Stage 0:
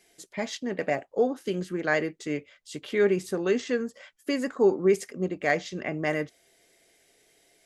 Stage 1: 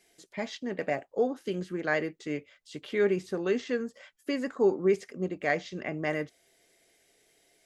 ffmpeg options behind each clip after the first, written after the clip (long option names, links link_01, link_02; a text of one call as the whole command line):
ffmpeg -i in.wav -filter_complex "[0:a]acrossover=split=5600[link_01][link_02];[link_02]acompressor=threshold=-56dB:ratio=4:attack=1:release=60[link_03];[link_01][link_03]amix=inputs=2:normalize=0,volume=-3dB" out.wav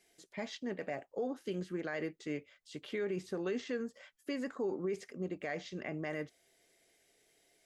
ffmpeg -i in.wav -af "alimiter=limit=-23.5dB:level=0:latency=1:release=59,volume=-4.5dB" out.wav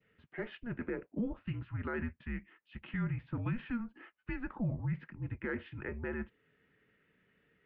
ffmpeg -i in.wav -af "highpass=frequency=320:width_type=q:width=0.5412,highpass=frequency=320:width_type=q:width=1.307,lowpass=frequency=2900:width_type=q:width=0.5176,lowpass=frequency=2900:width_type=q:width=0.7071,lowpass=frequency=2900:width_type=q:width=1.932,afreqshift=-240,adynamicequalizer=threshold=0.00141:dfrequency=1600:dqfactor=1.4:tfrequency=1600:tqfactor=1.4:attack=5:release=100:ratio=0.375:range=2:mode=cutabove:tftype=bell,volume=2.5dB" out.wav